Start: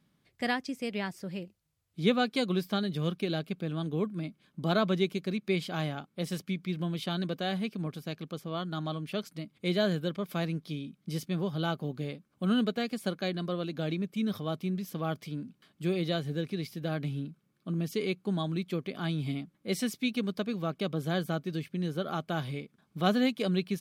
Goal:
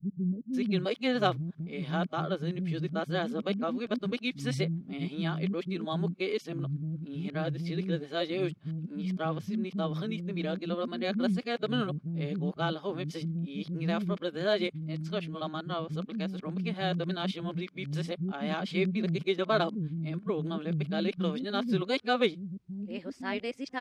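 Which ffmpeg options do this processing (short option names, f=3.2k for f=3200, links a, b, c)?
-filter_complex "[0:a]areverse,acrossover=split=250[a][b];[b]adelay=530[c];[a][c]amix=inputs=2:normalize=0,adynamicsmooth=sensitivity=1:basefreq=5.6k,volume=2dB"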